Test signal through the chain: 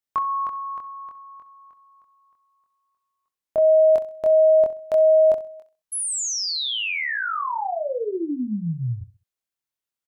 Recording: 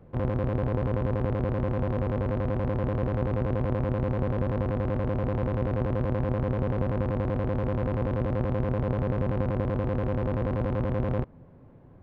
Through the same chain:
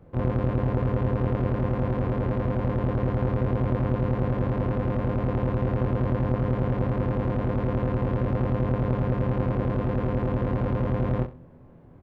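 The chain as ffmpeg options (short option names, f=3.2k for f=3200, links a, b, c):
-filter_complex "[0:a]asplit=2[a][b];[b]adelay=24,volume=-3dB[c];[a][c]amix=inputs=2:normalize=0,aecho=1:1:65|130|195:0.178|0.0516|0.015"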